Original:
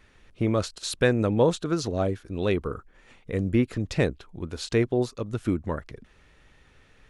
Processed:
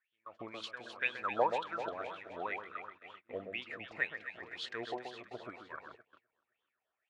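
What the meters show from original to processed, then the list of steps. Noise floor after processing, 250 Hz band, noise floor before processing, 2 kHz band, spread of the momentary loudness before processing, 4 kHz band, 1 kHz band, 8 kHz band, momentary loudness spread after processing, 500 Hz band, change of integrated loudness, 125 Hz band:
below −85 dBFS, −24.0 dB, −58 dBFS, −3.5 dB, 12 LU, −9.0 dB, −2.0 dB, below −20 dB, 16 LU, −15.0 dB, −13.0 dB, −32.0 dB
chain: echo ahead of the sound 289 ms −14.5 dB
LFO wah 2 Hz 630–3,300 Hz, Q 11
on a send: delay that swaps between a low-pass and a high-pass 129 ms, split 1,700 Hz, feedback 73%, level −6 dB
on the sum: noise gate −60 dBFS, range −21 dB
level +6.5 dB

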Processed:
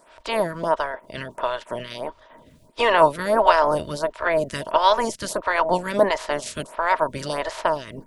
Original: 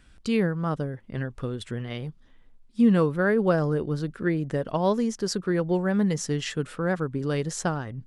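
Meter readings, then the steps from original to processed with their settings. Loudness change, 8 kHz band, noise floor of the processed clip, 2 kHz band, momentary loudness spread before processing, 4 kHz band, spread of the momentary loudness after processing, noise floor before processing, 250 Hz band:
+4.0 dB, +1.0 dB, −54 dBFS, +7.0 dB, 12 LU, +8.0 dB, 14 LU, −55 dBFS, −8.0 dB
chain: ceiling on every frequency bin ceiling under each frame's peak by 29 dB
hollow resonant body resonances 630/940 Hz, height 17 dB, ringing for 50 ms
phaser with staggered stages 1.5 Hz
level +1.5 dB

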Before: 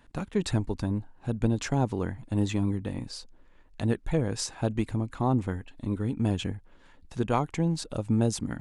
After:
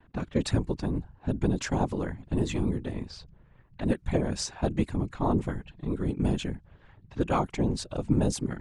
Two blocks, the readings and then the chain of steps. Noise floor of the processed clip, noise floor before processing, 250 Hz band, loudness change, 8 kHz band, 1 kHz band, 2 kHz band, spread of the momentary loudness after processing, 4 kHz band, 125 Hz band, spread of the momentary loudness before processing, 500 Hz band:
−59 dBFS, −56 dBFS, 0.0 dB, −0.5 dB, −0.5 dB, 0.0 dB, 0.0 dB, 9 LU, −0.5 dB, −1.5 dB, 9 LU, +0.5 dB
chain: low-pass that shuts in the quiet parts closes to 2,400 Hz, open at −23 dBFS
random phases in short frames
noise gate with hold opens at −54 dBFS

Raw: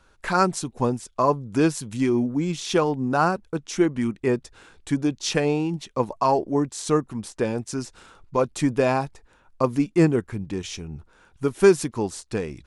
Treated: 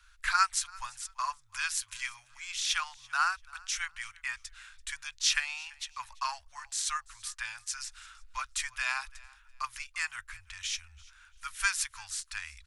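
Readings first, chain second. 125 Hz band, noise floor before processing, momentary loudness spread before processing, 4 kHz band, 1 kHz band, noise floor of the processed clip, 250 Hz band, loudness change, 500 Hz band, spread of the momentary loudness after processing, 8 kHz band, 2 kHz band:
below −30 dB, −59 dBFS, 11 LU, +1.0 dB, −9.0 dB, −61 dBFS, below −40 dB, −9.5 dB, below −40 dB, 14 LU, +1.0 dB, 0.0 dB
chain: inverse Chebyshev band-stop filter 160–450 Hz, stop band 70 dB
on a send: repeating echo 338 ms, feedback 24%, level −23.5 dB
on the sum: level +1 dB

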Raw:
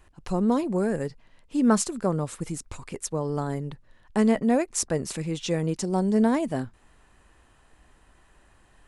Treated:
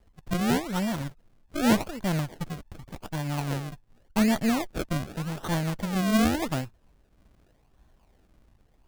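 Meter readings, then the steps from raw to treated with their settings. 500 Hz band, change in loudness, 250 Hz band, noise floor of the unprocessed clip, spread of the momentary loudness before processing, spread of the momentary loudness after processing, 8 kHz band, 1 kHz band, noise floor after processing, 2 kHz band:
−6.0 dB, −2.0 dB, −2.0 dB, −60 dBFS, 13 LU, 14 LU, −6.0 dB, −0.5 dB, −64 dBFS, +4.0 dB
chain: lower of the sound and its delayed copy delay 1.1 ms
rotating-speaker cabinet horn 5 Hz, later 1.1 Hz, at 0:04.03
sample-and-hold swept by an LFO 34×, swing 100% 0.86 Hz

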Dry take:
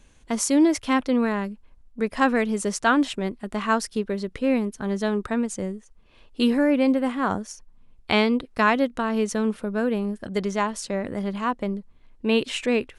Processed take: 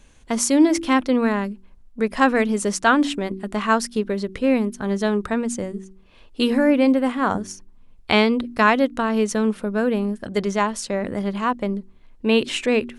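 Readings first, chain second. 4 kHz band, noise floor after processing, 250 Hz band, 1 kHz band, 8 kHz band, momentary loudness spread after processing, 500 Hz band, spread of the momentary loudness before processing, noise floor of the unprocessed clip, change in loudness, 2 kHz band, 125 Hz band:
+3.5 dB, −50 dBFS, +3.0 dB, +3.5 dB, +3.5 dB, 11 LU, +3.5 dB, 10 LU, −55 dBFS, +3.0 dB, +3.5 dB, +3.0 dB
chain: hum removal 47.65 Hz, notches 8
level +3.5 dB

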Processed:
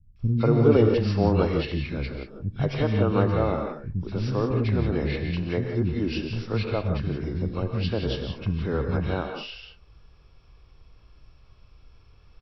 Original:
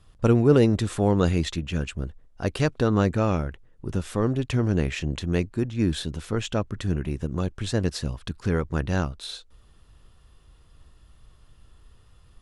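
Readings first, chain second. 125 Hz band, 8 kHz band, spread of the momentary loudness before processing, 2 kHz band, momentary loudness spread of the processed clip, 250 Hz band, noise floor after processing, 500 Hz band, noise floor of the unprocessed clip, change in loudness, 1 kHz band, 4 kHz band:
+0.5 dB, below −15 dB, 11 LU, −1.0 dB, 11 LU, −1.0 dB, −55 dBFS, +1.0 dB, −55 dBFS, 0.0 dB, 0.0 dB, −2.0 dB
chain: hearing-aid frequency compression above 1,500 Hz 1.5 to 1
three-band delay without the direct sound lows, highs, mids 160/190 ms, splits 220/1,700 Hz
reverb whose tail is shaped and stops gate 200 ms rising, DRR 4 dB

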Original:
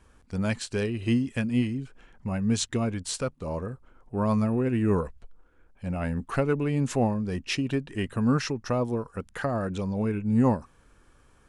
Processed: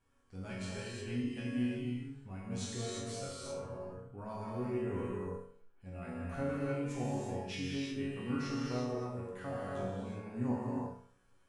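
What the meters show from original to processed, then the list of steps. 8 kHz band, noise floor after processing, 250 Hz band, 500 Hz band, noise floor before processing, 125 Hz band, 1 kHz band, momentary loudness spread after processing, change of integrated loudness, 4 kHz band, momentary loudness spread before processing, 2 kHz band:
−10.5 dB, −66 dBFS, −11.0 dB, −9.5 dB, −60 dBFS, −12.0 dB, −10.5 dB, 10 LU, −11.0 dB, −9.5 dB, 10 LU, −10.5 dB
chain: resonators tuned to a chord F#2 sus4, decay 0.51 s
reverb whose tail is shaped and stops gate 390 ms flat, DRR −4 dB
level −1 dB

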